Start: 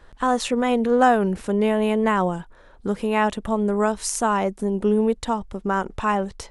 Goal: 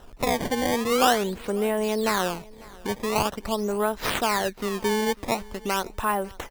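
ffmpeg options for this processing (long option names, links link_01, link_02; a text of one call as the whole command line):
ffmpeg -i in.wav -filter_complex "[0:a]acrossover=split=460|2200[link_01][link_02][link_03];[link_03]acompressor=mode=upward:threshold=-53dB:ratio=2.5[link_04];[link_01][link_02][link_04]amix=inputs=3:normalize=0,highshelf=frequency=7700:gain=4.5,asplit=2[link_05][link_06];[link_06]acompressor=threshold=-31dB:ratio=6,volume=0.5dB[link_07];[link_05][link_07]amix=inputs=2:normalize=0,equalizer=frequency=170:width=1.4:gain=-6.5,acrusher=samples=19:mix=1:aa=0.000001:lfo=1:lforange=30.4:lforate=0.45,aecho=1:1:547|1094:0.0708|0.0205,volume=-4.5dB" out.wav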